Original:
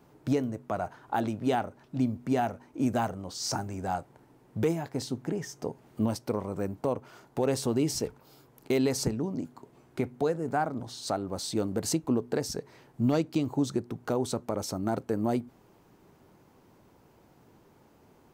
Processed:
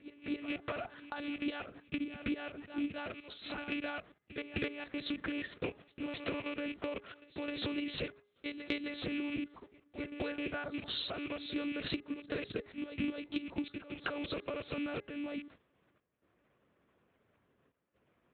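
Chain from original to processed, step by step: rattling part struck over -36 dBFS, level -36 dBFS; gate -46 dBFS, range -18 dB; step gate "x.xxxxxx.xxxx..x" 61 bpm -12 dB; low-pass opened by the level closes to 2200 Hz, open at -35.5 dBFS; level quantiser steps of 12 dB; monotone LPC vocoder at 8 kHz 290 Hz; HPF 63 Hz; tilt +3 dB/oct; reverse echo 0.262 s -21.5 dB; compressor 16:1, threshold -51 dBFS, peak gain reduction 22 dB; bell 870 Hz -10 dB 0.66 oct; de-hum 411.4 Hz, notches 5; gain +18 dB

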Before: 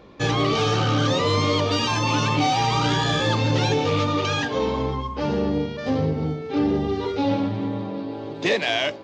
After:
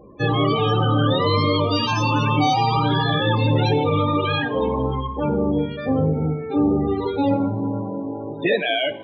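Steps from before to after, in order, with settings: loudest bins only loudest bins 32; two-slope reverb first 0.67 s, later 2.8 s, from -21 dB, DRR 14.5 dB; gain +2.5 dB

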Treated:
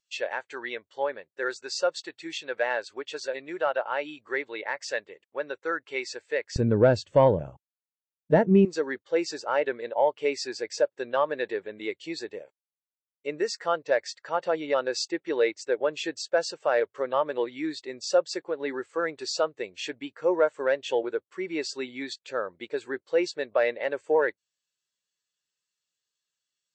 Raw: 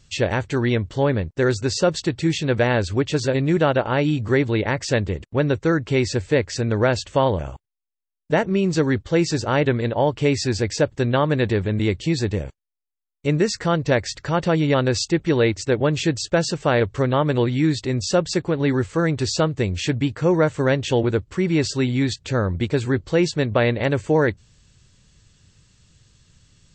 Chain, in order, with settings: HPF 760 Hz 12 dB/oct, from 6.56 s 130 Hz, from 8.65 s 580 Hz; soft clip -11.5 dBFS, distortion -18 dB; spectral expander 1.5:1; gain +3 dB

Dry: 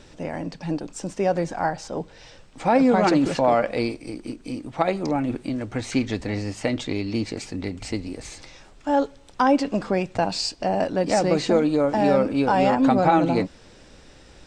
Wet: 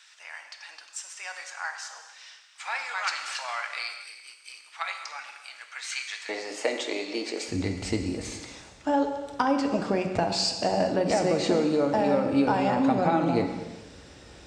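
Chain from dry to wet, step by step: HPF 1300 Hz 24 dB/oct, from 6.29 s 380 Hz, from 7.48 s 47 Hz; compressor 6:1, threshold -21 dBFS, peak gain reduction 8.5 dB; non-linear reverb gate 0.49 s falling, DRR 4.5 dB

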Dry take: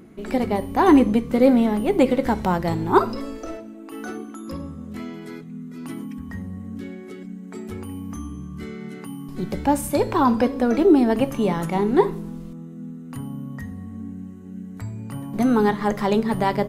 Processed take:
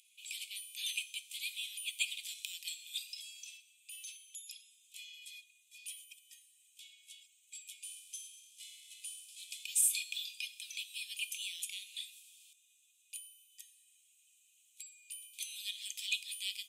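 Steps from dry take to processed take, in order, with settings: 7.82–9.65 CVSD 64 kbps; rippled Chebyshev high-pass 2400 Hz, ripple 9 dB; gain +6 dB

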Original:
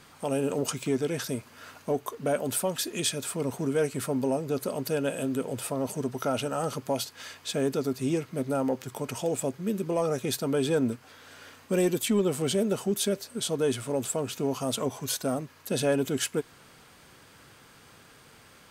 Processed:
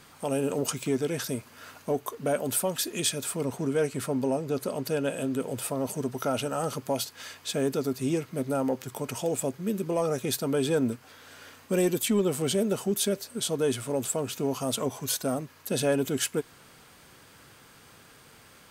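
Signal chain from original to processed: high shelf 11000 Hz +5.5 dB, from 3.45 s -3.5 dB, from 5.4 s +5.5 dB

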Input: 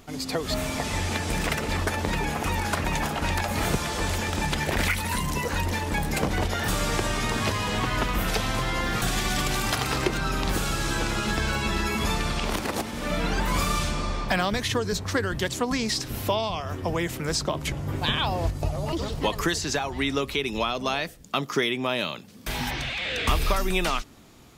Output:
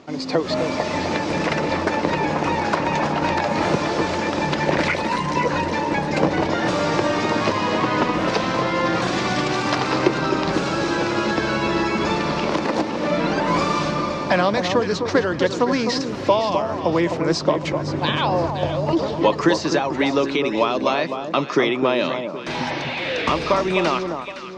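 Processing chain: speaker cabinet 150–5600 Hz, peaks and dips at 160 Hz +4 dB, 320 Hz +8 dB, 550 Hz +8 dB, 980 Hz +5 dB, 3300 Hz -4 dB; echo with dull and thin repeats by turns 0.257 s, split 1200 Hz, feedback 57%, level -6 dB; gain +3.5 dB

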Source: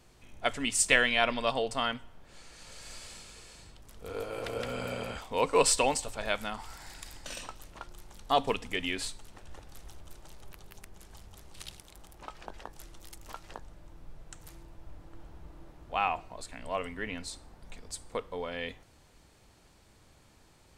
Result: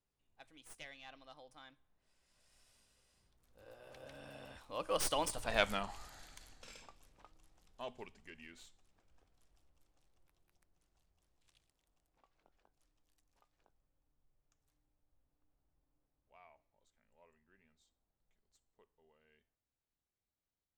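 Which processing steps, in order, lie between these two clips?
tracing distortion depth 0.062 ms; Doppler pass-by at 5.62, 40 m/s, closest 8.2 m

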